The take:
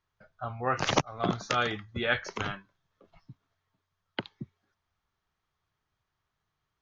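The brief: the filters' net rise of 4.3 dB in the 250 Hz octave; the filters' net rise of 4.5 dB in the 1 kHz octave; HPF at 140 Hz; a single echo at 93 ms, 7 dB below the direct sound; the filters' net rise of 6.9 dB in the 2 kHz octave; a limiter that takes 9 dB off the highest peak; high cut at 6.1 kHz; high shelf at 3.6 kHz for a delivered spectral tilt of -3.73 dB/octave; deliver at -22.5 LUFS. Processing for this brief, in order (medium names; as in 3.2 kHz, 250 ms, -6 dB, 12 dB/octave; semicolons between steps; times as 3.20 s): high-pass 140 Hz; low-pass 6.1 kHz; peaking EQ 250 Hz +6 dB; peaking EQ 1 kHz +3 dB; peaking EQ 2 kHz +6.5 dB; treble shelf 3.6 kHz +5.5 dB; peak limiter -13 dBFS; delay 93 ms -7 dB; trim +5.5 dB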